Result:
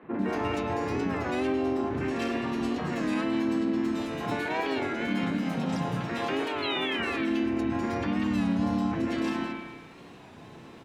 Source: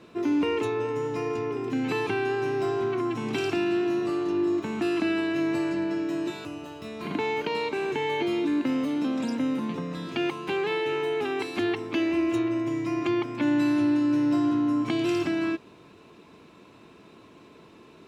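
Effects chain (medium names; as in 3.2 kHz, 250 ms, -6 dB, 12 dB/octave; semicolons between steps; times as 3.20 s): treble shelf 2.6 kHz +4.5 dB; time stretch by phase-locked vocoder 0.6×; spring tank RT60 1.2 s, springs 33 ms, chirp 75 ms, DRR 0.5 dB; compression 12:1, threshold -25 dBFS, peak gain reduction 9.5 dB; painted sound fall, 6.44–7.07 s, 2.2–4.4 kHz -32 dBFS; peak limiter -23.5 dBFS, peak gain reduction 6.5 dB; harmony voices -7 st -1 dB, -4 st -2 dB; three bands offset in time mids, lows, highs 30/190 ms, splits 270/2100 Hz; warped record 33 1/3 rpm, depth 100 cents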